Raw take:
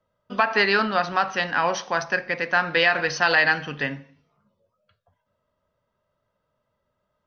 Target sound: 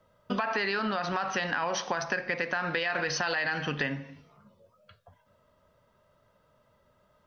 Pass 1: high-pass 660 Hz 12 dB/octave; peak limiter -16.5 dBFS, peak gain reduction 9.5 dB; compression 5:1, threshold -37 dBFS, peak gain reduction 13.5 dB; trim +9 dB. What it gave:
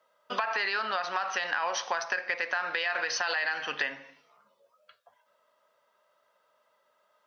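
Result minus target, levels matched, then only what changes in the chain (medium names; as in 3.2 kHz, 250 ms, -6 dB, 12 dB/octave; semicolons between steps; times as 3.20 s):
500 Hz band -4.0 dB
remove: high-pass 660 Hz 12 dB/octave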